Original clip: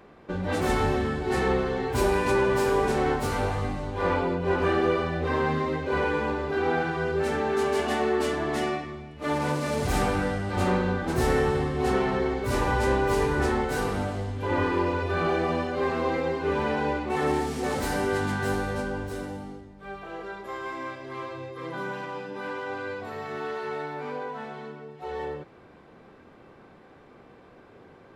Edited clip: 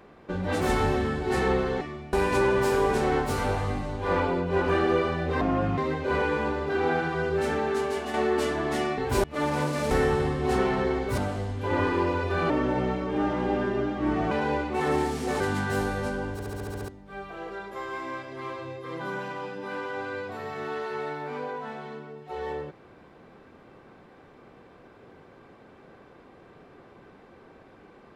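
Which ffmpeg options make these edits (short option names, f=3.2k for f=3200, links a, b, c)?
-filter_complex "[0:a]asplit=21[a][b][c][d][e][f][g][h][i][j][k][l][m][n][o][p][q][r][s][t][u];[a]atrim=end=1.812[v];[b]atrim=start=8.798:end=9.122[w];[c]atrim=start=2.068:end=5.354[x];[d]atrim=start=5.35:end=5.6,asetpts=PTS-STARTPTS,asetrate=29988,aresample=44100,atrim=end_sample=16213,asetpts=PTS-STARTPTS[y];[e]atrim=start=5.596:end=7.96,asetpts=PTS-STARTPTS,afade=t=out:st=1.784:d=0.58:silence=0.446684[z];[f]atrim=start=7.96:end=8.802,asetpts=PTS-STARTPTS,afade=t=in:d=0.004:c=hsin:silence=0.446684[aa];[g]atrim=start=1.808:end=2.072[ab];[h]atrim=start=9.118:end=9.792[ac];[i]atrim=start=11.258:end=12.532[ad];[j]atrim=start=13.968:end=15.294[ae];[k]atrim=start=15.29:end=16.67,asetpts=PTS-STARTPTS,asetrate=33516,aresample=44100,atrim=end_sample=80076,asetpts=PTS-STARTPTS[af];[l]atrim=start=16.666:end=17.762[ag];[m]atrim=start=18.128:end=19.122[ah];[n]atrim=start=19.048:end=19.122[ai];[o]atrim=start=19.048:end=19.122[aj];[p]atrim=start=19.048:end=19.122[ak];[q]atrim=start=19.048:end=19.122[al];[r]atrim=start=19.048:end=19.122[am];[s]atrim=start=19.048:end=19.122[an];[t]atrim=start=19.048:end=19.122[ao];[u]atrim=start=19.608[ap];[v][w]acrossfade=d=0.004:c1=hsin:c2=hsin[aq];[aq][x]acrossfade=d=0.004:c1=hsin:c2=hsin[ar];[ar][y]acrossfade=d=0.004:c1=hsin:c2=hsin[as];[z][aa]concat=n=2:v=0:a=1[at];[as][at]acrossfade=d=0.004:c1=hsin:c2=hsin[au];[au][ab]acrossfade=d=0.004:c1=hsin:c2=hsin[av];[av][ac]acrossfade=d=0.004:c1=hsin:c2=hsin[aw];[aw][ad]acrossfade=d=0.004:c1=hsin:c2=hsin[ax];[ax][ae]acrossfade=d=0.004:c1=hsin:c2=hsin[ay];[ay][af]acrossfade=d=0.004:c1=hsin:c2=hsin[az];[az][ag]acrossfade=d=0.004:c1=hsin:c2=hsin[ba];[ba][ah]acrossfade=d=0.004:c1=hsin:c2=hsin[bb];[bb][ai]acrossfade=d=0.004:c1=hsin:c2=hsin[bc];[bc][aj]acrossfade=d=0.004:c1=hsin:c2=hsin[bd];[bd][ak]acrossfade=d=0.004:c1=hsin:c2=hsin[be];[be][al]acrossfade=d=0.004:c1=hsin:c2=hsin[bf];[bf][am]acrossfade=d=0.004:c1=hsin:c2=hsin[bg];[bg][an]acrossfade=d=0.004:c1=hsin:c2=hsin[bh];[bh][ao]acrossfade=d=0.004:c1=hsin:c2=hsin[bi];[bi][ap]acrossfade=d=0.004:c1=hsin:c2=hsin"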